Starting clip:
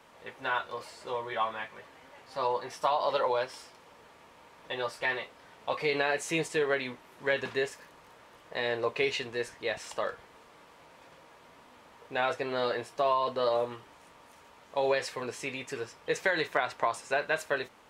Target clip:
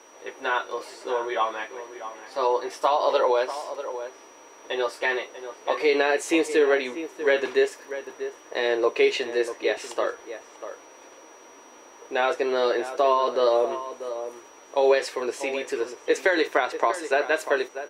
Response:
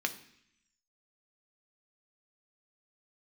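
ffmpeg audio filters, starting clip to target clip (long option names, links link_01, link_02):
-filter_complex "[0:a]lowshelf=frequency=230:width_type=q:width=3:gain=-13,aeval=exprs='val(0)+0.00112*sin(2*PI*5800*n/s)':channel_layout=same,asplit=2[link_01][link_02];[link_02]adelay=641.4,volume=-11dB,highshelf=frequency=4000:gain=-14.4[link_03];[link_01][link_03]amix=inputs=2:normalize=0,volume=4.5dB"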